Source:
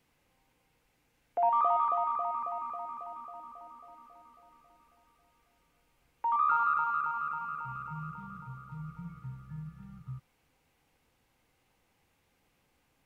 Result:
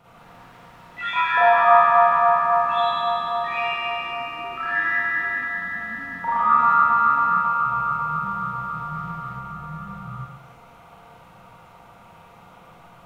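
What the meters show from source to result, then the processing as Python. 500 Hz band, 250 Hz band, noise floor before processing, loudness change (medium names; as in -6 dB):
+16.0 dB, +11.0 dB, -74 dBFS, +11.0 dB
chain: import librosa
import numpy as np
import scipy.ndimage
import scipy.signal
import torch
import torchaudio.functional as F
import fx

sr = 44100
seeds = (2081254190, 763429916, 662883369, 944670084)

y = fx.bin_compress(x, sr, power=0.6)
y = fx.rev_schroeder(y, sr, rt60_s=0.95, comb_ms=33, drr_db=-8.0)
y = fx.echo_pitch(y, sr, ms=161, semitones=6, count=3, db_per_echo=-6.0)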